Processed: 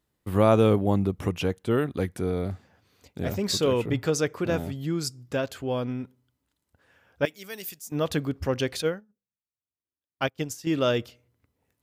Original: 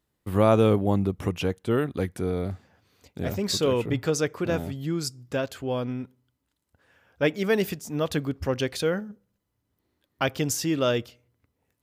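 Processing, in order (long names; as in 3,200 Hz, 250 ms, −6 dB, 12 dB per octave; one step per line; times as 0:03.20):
0:07.25–0:07.92: first-order pre-emphasis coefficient 0.9
0:08.82–0:10.67: expander for the loud parts 2.5 to 1, over −40 dBFS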